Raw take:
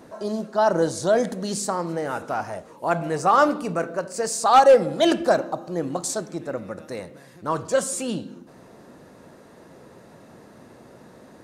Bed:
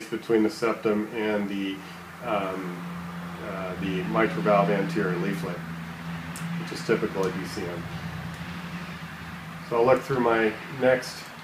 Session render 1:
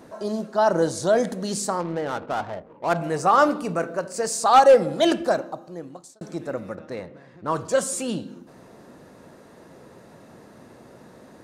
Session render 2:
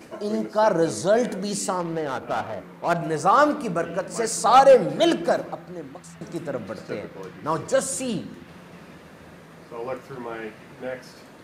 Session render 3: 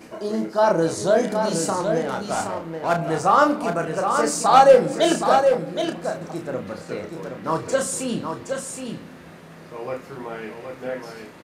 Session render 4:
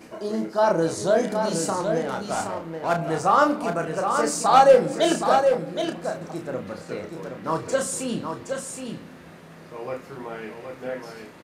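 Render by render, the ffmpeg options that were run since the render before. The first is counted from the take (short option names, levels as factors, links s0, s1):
-filter_complex "[0:a]asettb=1/sr,asplit=3[s0][s1][s2];[s0]atrim=end=1.804[s3];[s1]atrim=start=1.8:end=2.97,asetpts=PTS-STARTPTS,afade=t=in:d=0.004:c=qsin,afade=t=out:st=1.166:d=0.004:c=qsin,adynamicsmooth=sensitivity=5:basefreq=500[s4];[s2]atrim=start=2.966[s5];[s3][s4]acrossfade=d=0.004:c1=hsin:c2=qsin[s6];[s6][s5]acrossfade=d=0.004:c1=qsin:c2=hsin,asettb=1/sr,asplit=3[s7][s8][s9];[s7]atrim=end=6.754[s10];[s8]atrim=start=6.75:end=7.5,asetpts=PTS-STARTPTS,afade=t=in:d=0.004:c=qsin,afade=t=out:st=0.746:d=0.004:c=qsin,adynamicsmooth=sensitivity=7.5:basefreq=2900[s11];[s9]atrim=start=7.496[s12];[s10][s11]acrossfade=d=0.004:c1=hsin:c2=qsin[s13];[s13][s12]acrossfade=d=0.004:c1=qsin:c2=hsin,asplit=2[s14][s15];[s14]atrim=end=6.21,asetpts=PTS-STARTPTS,afade=t=out:st=4.97:d=1.24[s16];[s15]atrim=start=6.21,asetpts=PTS-STARTPTS,afade=t=in:d=0.004:c=hsin[s17];[s16][s17]concat=n=2:v=0:a=1"
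-filter_complex "[1:a]volume=0.266[s0];[0:a][s0]amix=inputs=2:normalize=0"
-filter_complex "[0:a]asplit=2[s0][s1];[s1]adelay=31,volume=0.531[s2];[s0][s2]amix=inputs=2:normalize=0,aecho=1:1:770:0.501"
-af "volume=0.794"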